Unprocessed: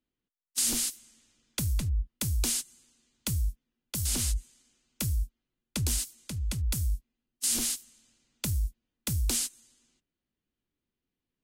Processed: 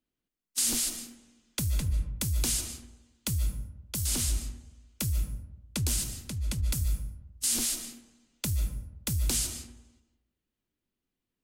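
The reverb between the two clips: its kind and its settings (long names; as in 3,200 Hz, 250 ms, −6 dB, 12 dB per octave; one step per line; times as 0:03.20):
comb and all-pass reverb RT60 0.95 s, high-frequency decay 0.4×, pre-delay 105 ms, DRR 8 dB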